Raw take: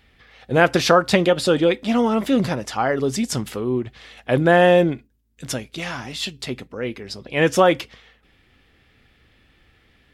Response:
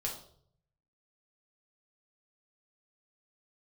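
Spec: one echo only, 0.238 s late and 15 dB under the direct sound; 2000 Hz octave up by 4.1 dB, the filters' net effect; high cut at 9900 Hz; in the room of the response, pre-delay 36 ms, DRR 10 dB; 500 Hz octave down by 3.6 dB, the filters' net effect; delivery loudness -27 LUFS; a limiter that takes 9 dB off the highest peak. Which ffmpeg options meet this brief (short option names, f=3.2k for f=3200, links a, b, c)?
-filter_complex "[0:a]lowpass=9.9k,equalizer=f=500:t=o:g=-4.5,equalizer=f=2k:t=o:g=5.5,alimiter=limit=-9dB:level=0:latency=1,aecho=1:1:238:0.178,asplit=2[a][b];[1:a]atrim=start_sample=2205,adelay=36[c];[b][c]afir=irnorm=-1:irlink=0,volume=-11.5dB[d];[a][d]amix=inputs=2:normalize=0,volume=-5dB"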